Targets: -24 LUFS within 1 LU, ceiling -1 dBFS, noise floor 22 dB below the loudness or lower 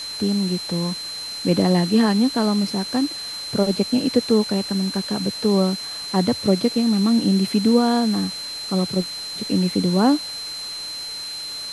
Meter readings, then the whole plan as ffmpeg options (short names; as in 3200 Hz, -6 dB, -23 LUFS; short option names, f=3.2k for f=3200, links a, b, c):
steady tone 4100 Hz; tone level -29 dBFS; noise floor -31 dBFS; noise floor target -43 dBFS; loudness -21.0 LUFS; peak -5.0 dBFS; loudness target -24.0 LUFS
-> -af "bandreject=f=4.1k:w=30"
-af "afftdn=nr=12:nf=-31"
-af "volume=-3dB"